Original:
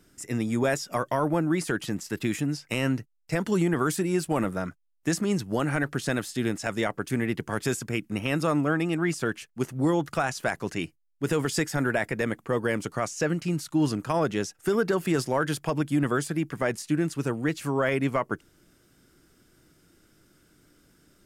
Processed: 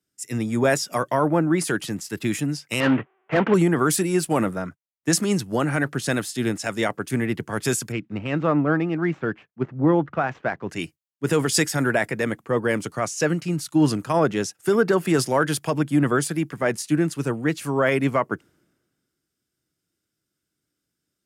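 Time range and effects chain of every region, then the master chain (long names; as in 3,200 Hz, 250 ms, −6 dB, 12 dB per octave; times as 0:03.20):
0:02.80–0:03.54: variable-slope delta modulation 16 kbit/s + mid-hump overdrive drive 22 dB, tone 1,400 Hz, clips at −14.5 dBFS
0:07.92–0:10.70: running median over 9 samples + high-frequency loss of the air 190 metres
whole clip: high-pass filter 84 Hz; dynamic equaliser 9,900 Hz, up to +4 dB, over −57 dBFS, Q 7; multiband upward and downward expander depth 70%; level +4.5 dB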